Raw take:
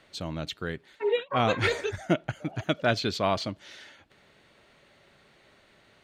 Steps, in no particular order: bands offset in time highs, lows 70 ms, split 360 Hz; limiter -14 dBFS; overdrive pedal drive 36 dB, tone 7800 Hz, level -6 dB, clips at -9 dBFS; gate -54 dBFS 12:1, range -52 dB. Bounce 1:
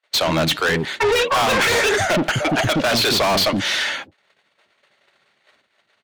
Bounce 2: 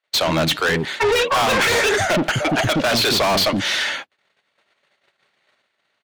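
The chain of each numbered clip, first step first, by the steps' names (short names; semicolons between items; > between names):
gate > bands offset in time > overdrive pedal > limiter; bands offset in time > gate > overdrive pedal > limiter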